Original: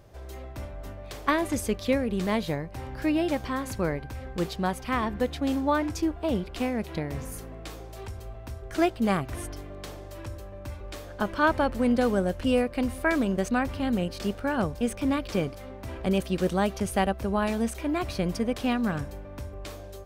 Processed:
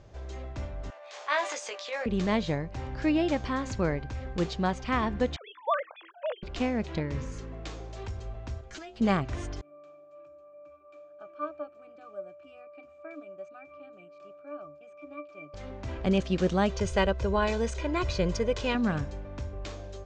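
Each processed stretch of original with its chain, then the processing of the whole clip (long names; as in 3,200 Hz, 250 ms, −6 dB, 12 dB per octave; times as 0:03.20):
0:00.90–0:02.06: high-pass filter 630 Hz 24 dB per octave + transient designer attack −9 dB, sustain +6 dB + double-tracking delay 17 ms −6 dB
0:05.36–0:06.43: three sine waves on the formant tracks + Butterworth high-pass 500 Hz 72 dB per octave
0:07.00–0:07.53: Butterworth band-reject 720 Hz, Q 4 + parametric band 14,000 Hz −13.5 dB 0.62 octaves
0:08.61–0:09.01: stiff-string resonator 72 Hz, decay 0.22 s, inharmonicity 0.002 + downward compressor 10 to 1, threshold −40 dBFS + high-shelf EQ 2,700 Hz +9.5 dB
0:09.61–0:15.54: high-pass filter 570 Hz + parametric band 7,900 Hz +11.5 dB 0.72 octaves + resonances in every octave D, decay 0.16 s
0:16.69–0:18.75: high-shelf EQ 8,600 Hz +4.5 dB + comb filter 2 ms, depth 64%
whole clip: elliptic low-pass filter 7,100 Hz, stop band 50 dB; low-shelf EQ 150 Hz +3.5 dB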